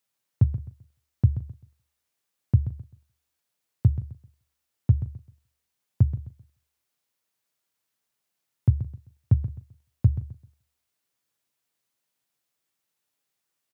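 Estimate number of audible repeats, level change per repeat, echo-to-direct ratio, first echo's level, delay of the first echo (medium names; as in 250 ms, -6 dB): 4, no regular repeats, -12.0 dB, -12.5 dB, 130 ms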